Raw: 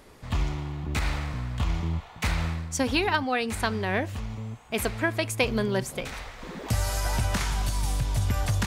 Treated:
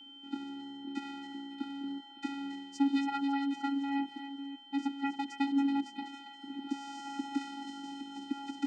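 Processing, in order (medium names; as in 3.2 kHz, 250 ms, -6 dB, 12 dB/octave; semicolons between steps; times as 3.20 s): vocoder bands 8, square 278 Hz; whistle 3.1 kHz -45 dBFS; thinning echo 276 ms, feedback 39%, high-pass 1.2 kHz, level -7.5 dB; trim -5 dB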